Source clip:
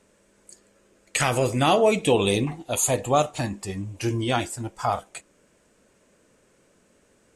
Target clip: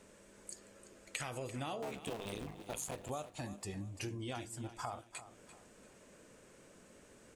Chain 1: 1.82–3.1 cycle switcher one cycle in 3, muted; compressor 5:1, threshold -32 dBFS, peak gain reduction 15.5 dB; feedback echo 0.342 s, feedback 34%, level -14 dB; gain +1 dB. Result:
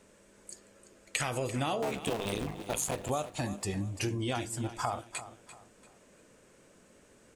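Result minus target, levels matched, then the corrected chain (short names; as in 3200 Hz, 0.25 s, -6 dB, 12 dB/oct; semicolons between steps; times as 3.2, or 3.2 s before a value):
compressor: peak gain reduction -9 dB
1.82–3.1 cycle switcher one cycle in 3, muted; compressor 5:1, threshold -43.5 dBFS, peak gain reduction 24.5 dB; feedback echo 0.342 s, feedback 34%, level -14 dB; gain +1 dB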